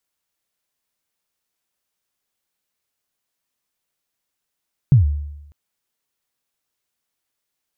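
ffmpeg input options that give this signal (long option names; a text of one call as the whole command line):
ffmpeg -f lavfi -i "aevalsrc='0.531*pow(10,-3*t/0.92)*sin(2*PI*(150*0.129/log(73/150)*(exp(log(73/150)*min(t,0.129)/0.129)-1)+73*max(t-0.129,0)))':duration=0.6:sample_rate=44100" out.wav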